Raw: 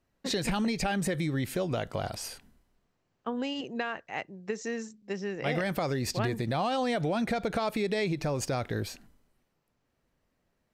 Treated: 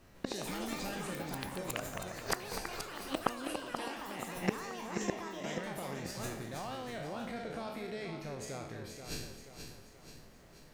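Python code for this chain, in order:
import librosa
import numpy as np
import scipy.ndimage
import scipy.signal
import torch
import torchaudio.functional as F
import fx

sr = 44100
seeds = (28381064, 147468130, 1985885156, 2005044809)

y = fx.spec_trails(x, sr, decay_s=0.75)
y = fx.lowpass(y, sr, hz=2100.0, slope=12, at=(1.21, 2.31), fade=0.02)
y = fx.gate_flip(y, sr, shuts_db=-31.0, range_db=-29)
y = fx.echo_feedback(y, sr, ms=481, feedback_pct=50, wet_db=-7.5)
y = fx.echo_pitch(y, sr, ms=153, semitones=7, count=3, db_per_echo=-3.0)
y = F.gain(torch.from_numpy(y), 14.0).numpy()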